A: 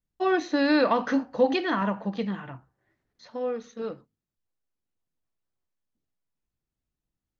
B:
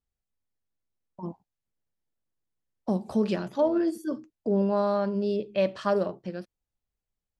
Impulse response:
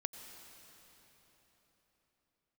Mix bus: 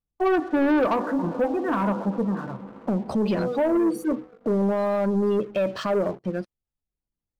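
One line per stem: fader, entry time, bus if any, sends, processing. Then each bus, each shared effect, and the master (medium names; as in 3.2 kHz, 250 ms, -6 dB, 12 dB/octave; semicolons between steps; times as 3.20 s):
-4.5 dB, 0.00 s, send -4.5 dB, low-pass 1.5 kHz 24 dB/octave; auto duck -13 dB, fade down 0.45 s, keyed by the second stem
+0.5 dB, 0.00 s, no send, peak limiter -20 dBFS, peak gain reduction 8 dB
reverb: on, RT60 4.3 s, pre-delay 82 ms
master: spectral gate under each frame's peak -30 dB strong; waveshaping leveller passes 2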